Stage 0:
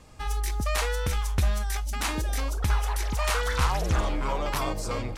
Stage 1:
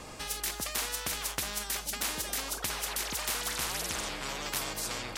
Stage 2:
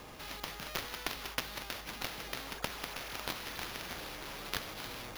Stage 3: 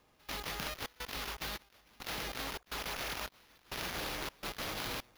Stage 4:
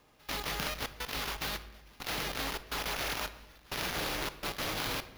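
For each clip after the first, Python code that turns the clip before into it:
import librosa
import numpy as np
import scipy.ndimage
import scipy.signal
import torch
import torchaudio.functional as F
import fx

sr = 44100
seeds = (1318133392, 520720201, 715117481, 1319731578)

y1 = fx.spectral_comp(x, sr, ratio=4.0)
y2 = fx.cheby_harmonics(y1, sr, harmonics=(7,), levels_db=(-13,), full_scale_db=-14.5)
y2 = fx.sample_hold(y2, sr, seeds[0], rate_hz=8100.0, jitter_pct=0)
y2 = y2 * 10.0 ** (1.0 / 20.0)
y3 = fx.over_compress(y2, sr, threshold_db=-43.0, ratio=-0.5)
y3 = fx.step_gate(y3, sr, bpm=105, pattern='..xxxx.xxxx.', floor_db=-24.0, edge_ms=4.5)
y3 = y3 * 10.0 ** (3.5 / 20.0)
y4 = fx.room_shoebox(y3, sr, seeds[1], volume_m3=540.0, walls='mixed', distance_m=0.35)
y4 = y4 * 10.0 ** (4.0 / 20.0)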